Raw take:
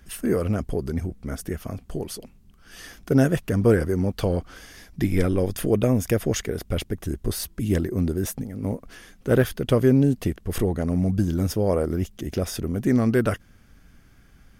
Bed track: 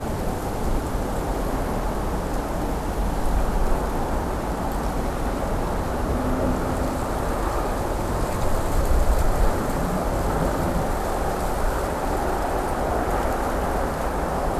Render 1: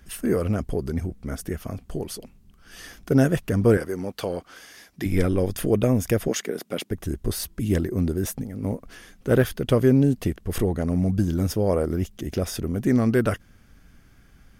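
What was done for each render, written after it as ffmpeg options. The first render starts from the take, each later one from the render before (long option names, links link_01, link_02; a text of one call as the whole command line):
ffmpeg -i in.wav -filter_complex "[0:a]asettb=1/sr,asplit=3[link_01][link_02][link_03];[link_01]atrim=end=3.774[link_04];[link_02]atrim=start=3.77:end=5.06,asetpts=PTS-STARTPTS,afade=type=in:duration=0.004:curve=qsin,afade=type=out:start_time=1.286:duration=0.004:curve=qsin,highpass=frequency=460:poles=1[link_05];[link_03]atrim=start=5.056[link_06];[link_04][link_05]acrossfade=duration=0.004:curve1=hsin:curve2=qsin[link_07];[link_07][link_06]acrossfade=duration=0.004:curve1=qsin:curve2=hsin,asettb=1/sr,asplit=3[link_08][link_09][link_10];[link_08]atrim=end=6.284[link_11];[link_09]atrim=start=6.28:end=6.91,asetpts=PTS-STARTPTS,afade=type=in:duration=0.004:curve=qsin,afade=type=out:start_time=0.626:duration=0.004:curve=qsin,highpass=frequency=190:width=0.5412,highpass=frequency=190:width=1.3066[link_12];[link_10]atrim=start=6.906[link_13];[link_11][link_12]acrossfade=duration=0.004:curve1=hsin:curve2=qsin[link_14];[link_14][link_13]acrossfade=duration=0.004:curve1=qsin:curve2=hsin" out.wav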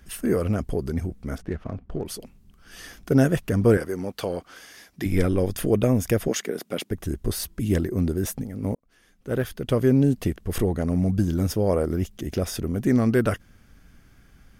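ffmpeg -i in.wav -filter_complex "[0:a]asettb=1/sr,asplit=3[link_01][link_02][link_03];[link_01]atrim=end=1.384[link_04];[link_02]atrim=start=1.38:end=2.06,asetpts=PTS-STARTPTS,afade=type=in:duration=0.004:curve=qsin,afade=type=out:start_time=0.676:duration=0.004:curve=qsin,adynamicsmooth=sensitivity=6.5:basefreq=1500[link_05];[link_03]atrim=start=2.056[link_06];[link_04][link_05]acrossfade=duration=0.004:curve1=hsin:curve2=qsin[link_07];[link_07][link_06]acrossfade=duration=0.004:curve1=qsin:curve2=hsin,asplit=2[link_08][link_09];[link_08]atrim=end=8.75,asetpts=PTS-STARTPTS,afade=type=out:start_time=8.746:duration=0.004:curve=hsin[link_10];[link_09]atrim=start=8.75,asetpts=PTS-STARTPTS,afade=type=in:duration=1.34[link_11];[link_10][link_11]concat=n=2:v=0:a=1" out.wav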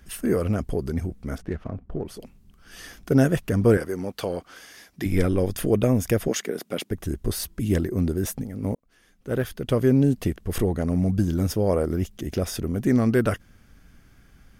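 ffmpeg -i in.wav -filter_complex "[0:a]asettb=1/sr,asplit=3[link_01][link_02][link_03];[link_01]atrim=end=1.684[link_04];[link_02]atrim=start=1.68:end=2.17,asetpts=PTS-STARTPTS,afade=type=in:duration=0.004:curve=qsin,afade=type=out:start_time=0.486:duration=0.004:curve=qsin,highshelf=frequency=2700:gain=-11.5[link_05];[link_03]atrim=start=2.166[link_06];[link_04][link_05]acrossfade=duration=0.004:curve1=hsin:curve2=qsin[link_07];[link_07][link_06]acrossfade=duration=0.004:curve1=qsin:curve2=hsin" out.wav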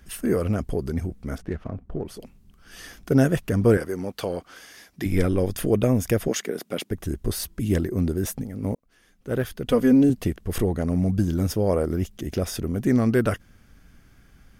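ffmpeg -i in.wav -filter_complex "[0:a]asettb=1/sr,asplit=3[link_01][link_02][link_03];[link_01]atrim=end=9.664[link_04];[link_02]atrim=start=9.66:end=10.1,asetpts=PTS-STARTPTS,afade=type=in:duration=0.004:curve=qsin,afade=type=out:start_time=0.436:duration=0.004:curve=qsin,aecho=1:1:4.1:0.77,atrim=end_sample=19404[link_05];[link_03]atrim=start=10.096[link_06];[link_04][link_05]acrossfade=duration=0.004:curve1=hsin:curve2=qsin[link_07];[link_07][link_06]acrossfade=duration=0.004:curve1=qsin:curve2=hsin" out.wav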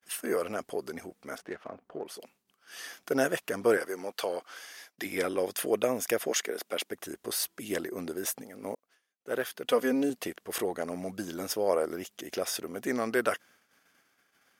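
ffmpeg -i in.wav -af "agate=range=-33dB:threshold=-46dB:ratio=3:detection=peak,highpass=540" out.wav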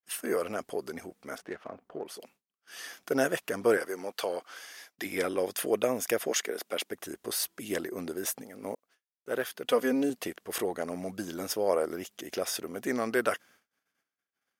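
ffmpeg -i in.wav -af "agate=range=-33dB:threshold=-56dB:ratio=3:detection=peak" out.wav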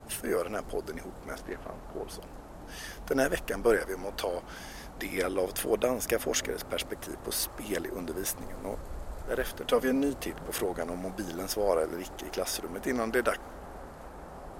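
ffmpeg -i in.wav -i bed.wav -filter_complex "[1:a]volume=-20.5dB[link_01];[0:a][link_01]amix=inputs=2:normalize=0" out.wav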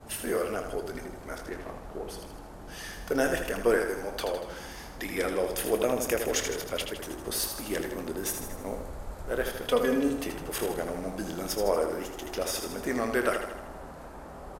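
ffmpeg -i in.wav -filter_complex "[0:a]asplit=2[link_01][link_02];[link_02]adelay=25,volume=-11.5dB[link_03];[link_01][link_03]amix=inputs=2:normalize=0,aecho=1:1:79|158|237|316|395|474|553:0.447|0.25|0.14|0.0784|0.0439|0.0246|0.0138" out.wav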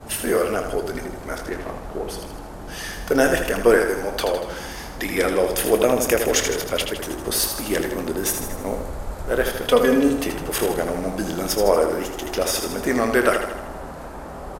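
ffmpeg -i in.wav -af "volume=9dB" out.wav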